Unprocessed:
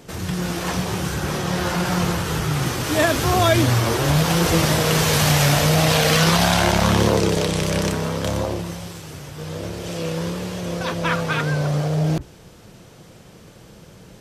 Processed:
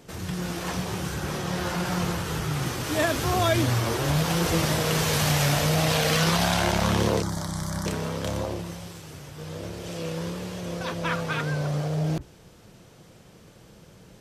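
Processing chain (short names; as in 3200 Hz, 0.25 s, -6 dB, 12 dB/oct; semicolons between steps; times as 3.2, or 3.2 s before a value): 7.22–7.86 fixed phaser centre 1100 Hz, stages 4; gain -6 dB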